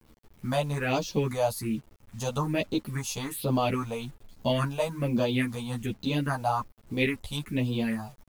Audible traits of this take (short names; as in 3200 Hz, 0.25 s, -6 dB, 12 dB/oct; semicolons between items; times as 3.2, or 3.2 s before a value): phasing stages 4, 1.2 Hz, lowest notch 300–2000 Hz; a quantiser's noise floor 10-bit, dither none; a shimmering, thickened sound